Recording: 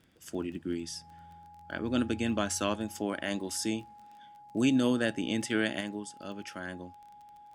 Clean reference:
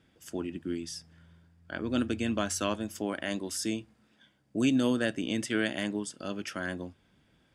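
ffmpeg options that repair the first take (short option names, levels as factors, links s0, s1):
-af "adeclick=t=4,bandreject=f=830:w=30,asetnsamples=n=441:p=0,asendcmd='5.81 volume volume 5dB',volume=1"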